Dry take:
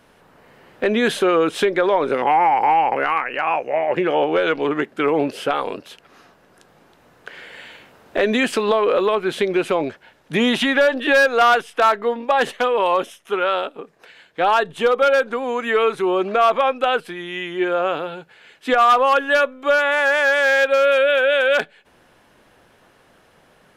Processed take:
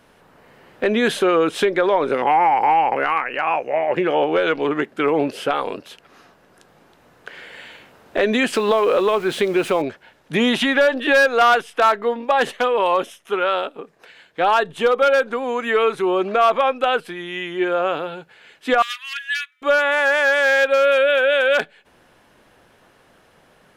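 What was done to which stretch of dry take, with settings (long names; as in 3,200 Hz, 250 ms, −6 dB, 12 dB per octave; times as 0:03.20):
0:08.54–0:09.82: converter with a step at zero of −34 dBFS
0:18.82–0:19.62: elliptic high-pass filter 1,800 Hz, stop band 70 dB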